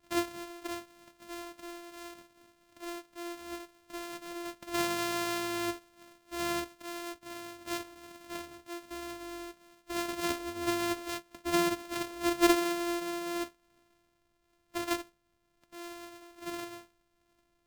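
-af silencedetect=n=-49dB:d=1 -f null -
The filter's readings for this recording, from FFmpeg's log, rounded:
silence_start: 13.49
silence_end: 14.74 | silence_duration: 1.25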